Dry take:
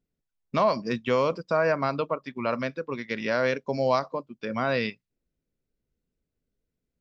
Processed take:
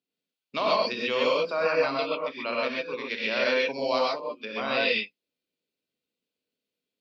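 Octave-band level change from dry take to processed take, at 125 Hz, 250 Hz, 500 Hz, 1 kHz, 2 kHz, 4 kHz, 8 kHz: −14.0 dB, −4.5 dB, −0.5 dB, −1.0 dB, +3.5 dB, +9.0 dB, can't be measured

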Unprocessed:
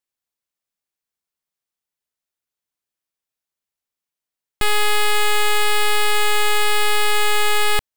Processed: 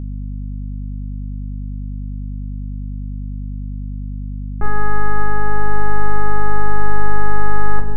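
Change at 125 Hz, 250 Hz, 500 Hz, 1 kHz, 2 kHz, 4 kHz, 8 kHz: +17.5 dB, +16.0 dB, −3.5 dB, −0.5 dB, −6.0 dB, below −40 dB, below −40 dB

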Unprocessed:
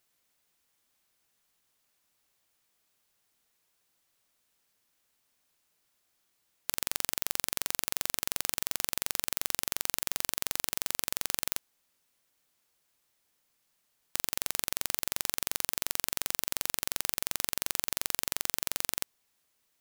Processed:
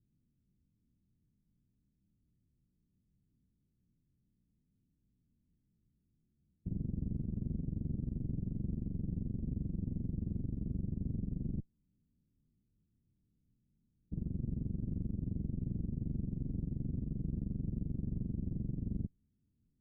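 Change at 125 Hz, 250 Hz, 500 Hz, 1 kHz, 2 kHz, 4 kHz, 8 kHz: +17.0 dB, +12.0 dB, −8.0 dB, below −30 dB, below −40 dB, below −40 dB, below −40 dB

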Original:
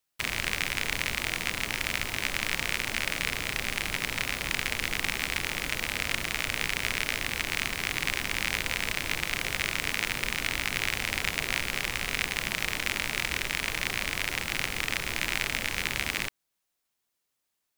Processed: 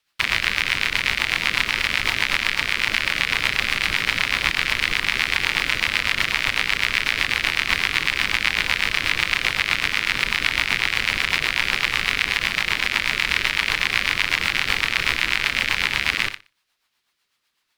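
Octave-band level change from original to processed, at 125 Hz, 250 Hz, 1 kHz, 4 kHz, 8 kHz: +3.5, +3.5, +8.5, +9.5, +1.5 decibels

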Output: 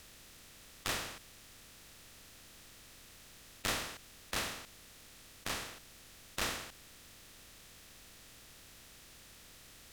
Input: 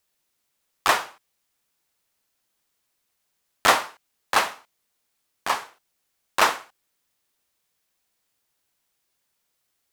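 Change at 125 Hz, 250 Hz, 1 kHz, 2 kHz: 0.0, −8.0, −21.0, −15.5 decibels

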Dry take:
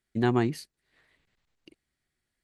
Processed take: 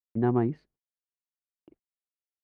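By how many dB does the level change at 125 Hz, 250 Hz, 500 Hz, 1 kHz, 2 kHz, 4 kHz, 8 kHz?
0.0 dB, 0.0 dB, 0.0 dB, −2.0 dB, −9.5 dB, below −20 dB, below −30 dB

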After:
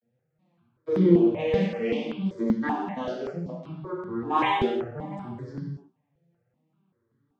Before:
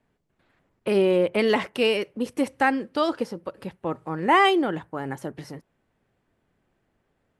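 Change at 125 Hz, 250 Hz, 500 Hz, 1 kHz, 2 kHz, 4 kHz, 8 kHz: +6.0 dB, +1.5 dB, −3.5 dB, −4.5 dB, −9.0 dB, −9.5 dB, below −10 dB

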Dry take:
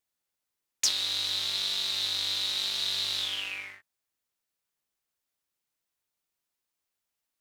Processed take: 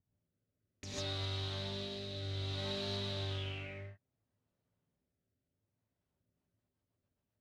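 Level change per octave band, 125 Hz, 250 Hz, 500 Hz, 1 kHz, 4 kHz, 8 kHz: +16.0, +9.0, +8.5, −3.5, −14.5, −20.5 decibels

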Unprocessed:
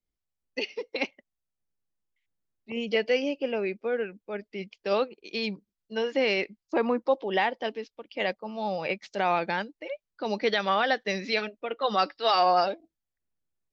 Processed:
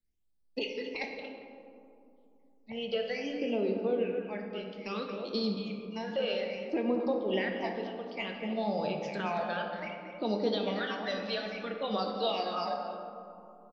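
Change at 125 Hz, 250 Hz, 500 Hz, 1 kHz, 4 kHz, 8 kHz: +0.5 dB, 0.0 dB, −4.5 dB, −9.0 dB, −5.0 dB, can't be measured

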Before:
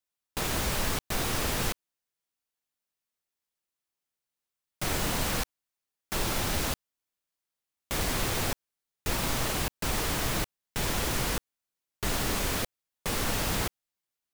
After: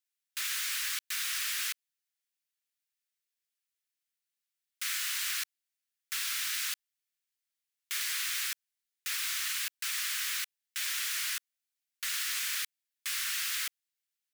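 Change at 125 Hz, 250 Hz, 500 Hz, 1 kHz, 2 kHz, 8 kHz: below −40 dB, below −40 dB, below −40 dB, −13.5 dB, −1.0 dB, 0.0 dB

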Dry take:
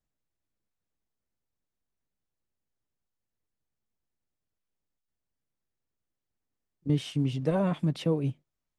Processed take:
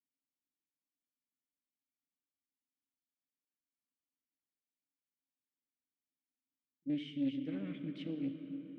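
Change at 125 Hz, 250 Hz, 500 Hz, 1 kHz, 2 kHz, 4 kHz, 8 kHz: −19.5 dB, −6.5 dB, −18.5 dB, below −25 dB, −10.5 dB, −10.0 dB, below −25 dB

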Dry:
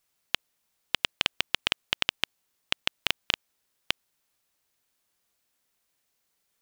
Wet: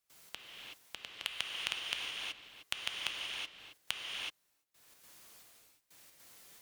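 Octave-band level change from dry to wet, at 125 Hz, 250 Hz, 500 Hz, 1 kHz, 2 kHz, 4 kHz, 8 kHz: −16.0, −15.5, −13.0, −10.0, −9.0, −9.0, −5.0 decibels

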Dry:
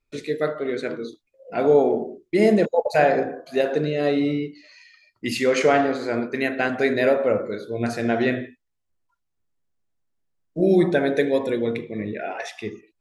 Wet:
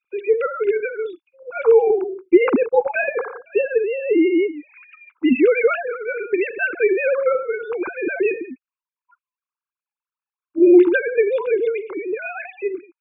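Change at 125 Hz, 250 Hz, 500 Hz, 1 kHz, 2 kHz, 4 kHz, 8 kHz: below −20 dB, +3.5 dB, +3.5 dB, −2.5 dB, +3.5 dB, can't be measured, below −35 dB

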